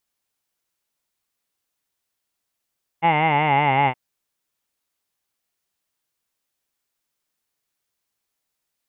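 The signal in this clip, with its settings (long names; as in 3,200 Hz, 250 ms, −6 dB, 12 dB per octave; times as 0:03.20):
vowel from formants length 0.92 s, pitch 162 Hz, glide −3.5 semitones, F1 840 Hz, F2 2,100 Hz, F3 2,800 Hz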